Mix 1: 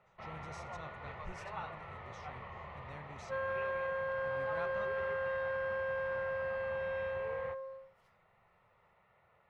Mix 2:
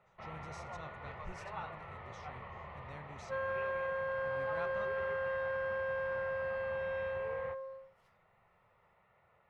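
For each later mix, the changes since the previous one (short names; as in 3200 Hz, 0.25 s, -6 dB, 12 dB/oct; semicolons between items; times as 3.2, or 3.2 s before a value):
first sound: add air absorption 83 m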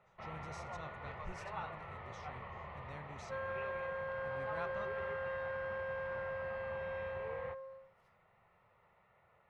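second sound -4.5 dB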